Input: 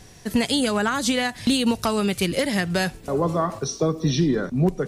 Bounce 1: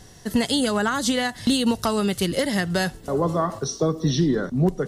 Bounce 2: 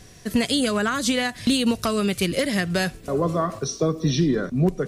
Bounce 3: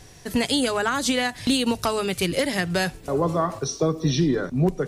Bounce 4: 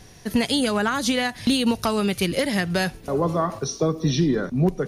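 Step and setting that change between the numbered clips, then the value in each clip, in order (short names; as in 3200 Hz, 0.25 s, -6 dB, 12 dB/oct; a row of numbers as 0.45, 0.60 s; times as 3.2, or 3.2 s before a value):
notch, frequency: 2400, 860, 210, 7700 Hz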